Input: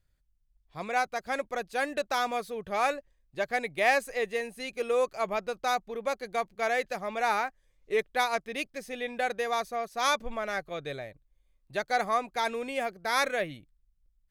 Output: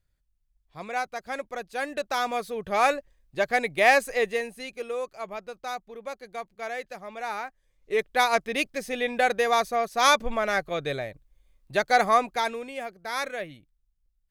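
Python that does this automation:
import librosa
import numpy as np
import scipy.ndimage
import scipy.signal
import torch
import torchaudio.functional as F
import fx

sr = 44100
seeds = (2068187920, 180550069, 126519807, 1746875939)

y = fx.gain(x, sr, db=fx.line((1.68, -1.5), (2.83, 5.5), (4.23, 5.5), (5.01, -5.5), (7.31, -5.5), (8.38, 7.0), (12.23, 7.0), (12.7, -3.5)))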